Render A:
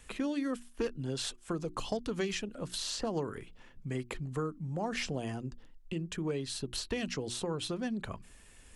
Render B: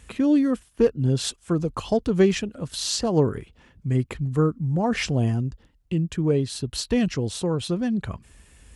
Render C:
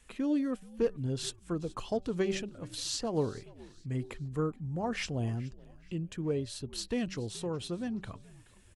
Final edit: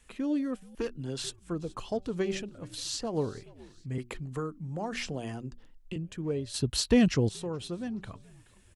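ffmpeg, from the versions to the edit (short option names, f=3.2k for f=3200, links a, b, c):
-filter_complex "[0:a]asplit=2[a][b];[2:a]asplit=4[c][d][e][f];[c]atrim=end=0.752[g];[a]atrim=start=0.748:end=1.242[h];[d]atrim=start=1.238:end=3.982[i];[b]atrim=start=3.978:end=5.962[j];[e]atrim=start=5.958:end=6.542[k];[1:a]atrim=start=6.538:end=7.292[l];[f]atrim=start=7.288[m];[g][h]acrossfade=d=0.004:c1=hsin:c2=hsin[n];[n][i]acrossfade=d=0.004:c1=hsin:c2=hsin[o];[o][j]acrossfade=d=0.004:c1=hsin:c2=hsin[p];[p][k]acrossfade=d=0.004:c1=hsin:c2=hsin[q];[q][l]acrossfade=d=0.004:c1=hsin:c2=hsin[r];[r][m]acrossfade=d=0.004:c1=hsin:c2=hsin"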